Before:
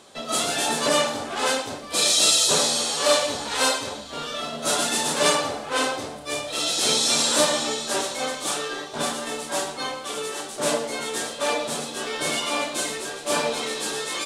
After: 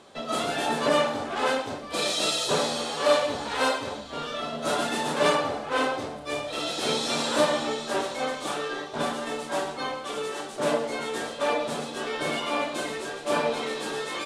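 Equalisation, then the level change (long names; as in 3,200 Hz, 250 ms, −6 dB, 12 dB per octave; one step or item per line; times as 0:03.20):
high-shelf EQ 4,600 Hz −12 dB
dynamic equaliser 6,700 Hz, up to −5 dB, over −39 dBFS, Q 0.73
0.0 dB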